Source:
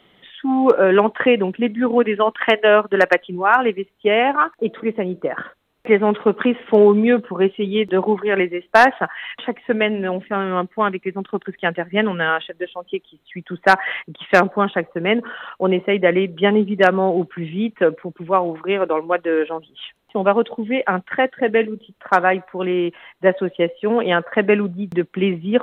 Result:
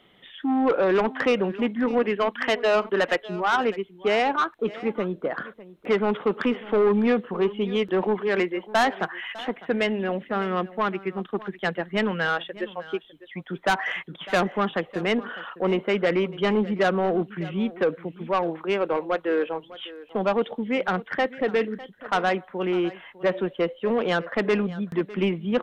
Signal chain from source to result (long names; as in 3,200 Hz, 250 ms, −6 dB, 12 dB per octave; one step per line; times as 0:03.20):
soft clipping −12 dBFS, distortion −11 dB
single-tap delay 603 ms −18 dB
level −3.5 dB